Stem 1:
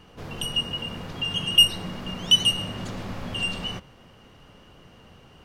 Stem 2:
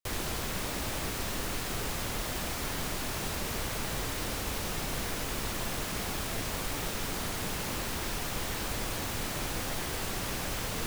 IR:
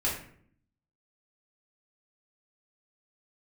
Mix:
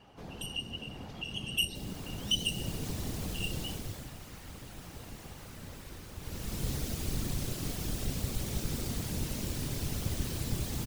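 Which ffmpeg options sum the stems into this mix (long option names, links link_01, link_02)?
-filter_complex "[0:a]equalizer=frequency=780:width=7.7:gain=9.5,volume=-1.5dB[link_01];[1:a]lowshelf=frequency=250:gain=7.5,dynaudnorm=framelen=210:gausssize=7:maxgain=7dB,adelay=1700,volume=5.5dB,afade=type=out:start_time=3.64:duration=0.49:silence=0.334965,afade=type=in:start_time=6.19:duration=0.48:silence=0.237137[link_02];[link_01][link_02]amix=inputs=2:normalize=0,acrossover=split=500|3000[link_03][link_04][link_05];[link_04]acompressor=threshold=-46dB:ratio=5[link_06];[link_03][link_06][link_05]amix=inputs=3:normalize=0,afftfilt=real='hypot(re,im)*cos(2*PI*random(0))':imag='hypot(re,im)*sin(2*PI*random(1))':win_size=512:overlap=0.75"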